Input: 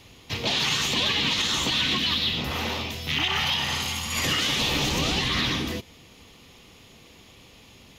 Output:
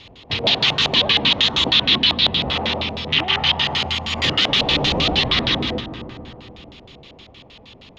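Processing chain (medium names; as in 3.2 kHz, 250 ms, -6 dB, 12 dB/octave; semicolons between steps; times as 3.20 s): reverberation RT60 3.4 s, pre-delay 120 ms, DRR 10 dB; LFO low-pass square 6.4 Hz 700–3700 Hz; trim +4 dB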